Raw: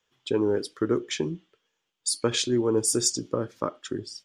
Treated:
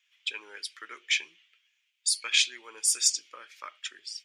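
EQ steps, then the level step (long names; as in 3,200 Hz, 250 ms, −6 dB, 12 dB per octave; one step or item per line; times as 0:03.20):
high-pass with resonance 2,300 Hz, resonance Q 3.9
0.0 dB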